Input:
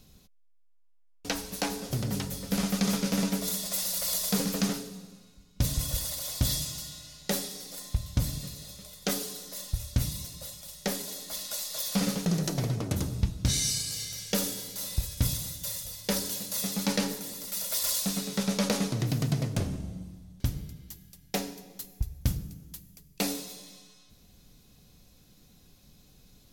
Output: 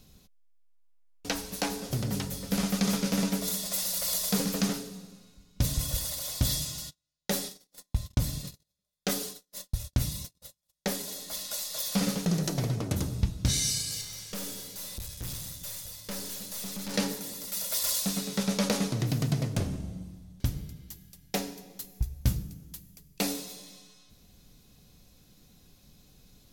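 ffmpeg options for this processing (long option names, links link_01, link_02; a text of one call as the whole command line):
ffmpeg -i in.wav -filter_complex "[0:a]asplit=3[link_01][link_02][link_03];[link_01]afade=type=out:start_time=6.89:duration=0.02[link_04];[link_02]agate=range=-40dB:threshold=-40dB:ratio=16:release=100:detection=peak,afade=type=in:start_time=6.89:duration=0.02,afade=type=out:start_time=10.92:duration=0.02[link_05];[link_03]afade=type=in:start_time=10.92:duration=0.02[link_06];[link_04][link_05][link_06]amix=inputs=3:normalize=0,asettb=1/sr,asplit=3[link_07][link_08][link_09];[link_07]atrim=end=14.014[link_10];[link_08]atrim=start=14.01:end=16.94,asetpts=PTS-STARTPTS,afade=type=in:duration=0.004:curve=qsin,afade=type=out:start_time=2.926:duration=0.004:curve=qsin,aeval=exprs='(tanh(50.1*val(0)+0.45)-tanh(0.45))/50.1':channel_layout=same[link_11];[link_09]atrim=start=16.936[link_12];[link_10][link_11]acrossfade=duration=0.004:curve1=hsin:curve2=qsin[link_13];[link_13][link_12]acrossfade=duration=0.004:curve1=qsin:curve2=hsin,asettb=1/sr,asplit=3[link_14][link_15][link_16];[link_14]atrim=end=21.934[link_17];[link_15]atrim=start=21.93:end=22.43,asetpts=PTS-STARTPTS,afade=type=in:duration=0.004:curve=qsin,afade=type=out:start_time=0.496:duration=0.004:curve=qsin,asplit=2[link_18][link_19];[link_19]adelay=16,volume=-7dB[link_20];[link_18][link_20]amix=inputs=2:normalize=0,atrim=end_sample=22050[link_21];[link_16]atrim=start=22.426[link_22];[link_17][link_21]acrossfade=duration=0.004:curve1=hsin:curve2=qsin[link_23];[link_23][link_22]acrossfade=duration=0.004:curve1=qsin:curve2=hsin" out.wav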